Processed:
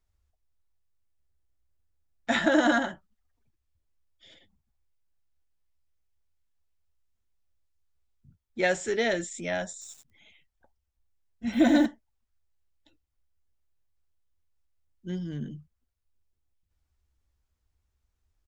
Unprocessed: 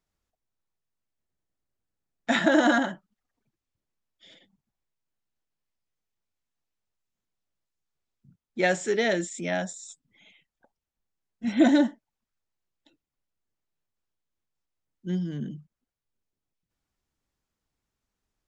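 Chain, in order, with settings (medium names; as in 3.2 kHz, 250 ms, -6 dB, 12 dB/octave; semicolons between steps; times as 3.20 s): resonant low shelf 110 Hz +12.5 dB, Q 1.5; doubling 13 ms -12.5 dB; 9.72–11.86 s: bit-crushed delay 95 ms, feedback 35%, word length 8-bit, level -6 dB; trim -1.5 dB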